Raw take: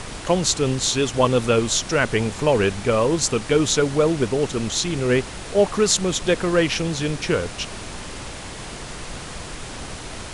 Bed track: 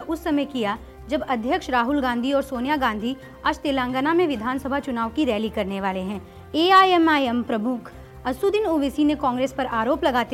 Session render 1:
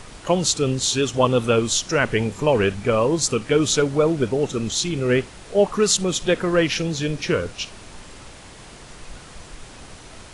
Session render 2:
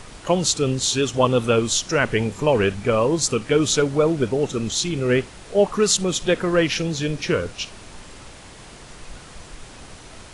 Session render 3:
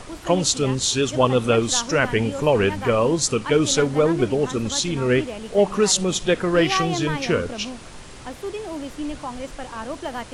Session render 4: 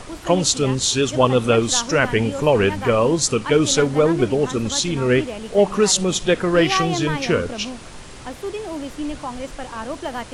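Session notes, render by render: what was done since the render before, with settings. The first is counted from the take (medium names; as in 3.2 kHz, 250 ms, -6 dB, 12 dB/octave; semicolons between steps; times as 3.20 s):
noise print and reduce 8 dB
no audible change
add bed track -10 dB
trim +2 dB; peak limiter -1 dBFS, peak gain reduction 1 dB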